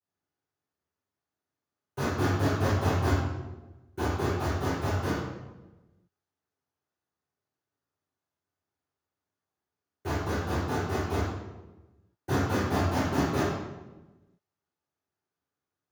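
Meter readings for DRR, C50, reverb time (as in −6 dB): −18.0 dB, −1.0 dB, 1.1 s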